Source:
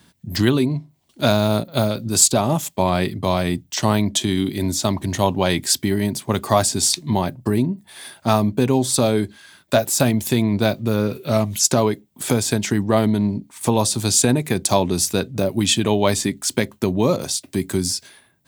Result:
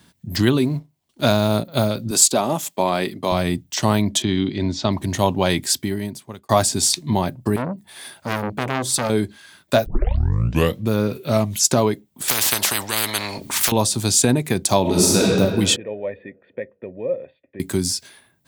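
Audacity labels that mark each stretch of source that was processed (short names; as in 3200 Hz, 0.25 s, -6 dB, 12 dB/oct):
0.600000	1.540000	G.711 law mismatch coded by A
2.110000	3.320000	HPF 230 Hz
4.220000	4.920000	LPF 4900 Hz 24 dB/oct
5.560000	6.490000	fade out
7.560000	9.100000	core saturation saturates under 2200 Hz
9.860000	9.860000	tape start 1.03 s
12.280000	13.720000	spectral compressor 10:1
14.810000	15.240000	reverb throw, RT60 2.1 s, DRR -5.5 dB
15.760000	17.600000	vocal tract filter e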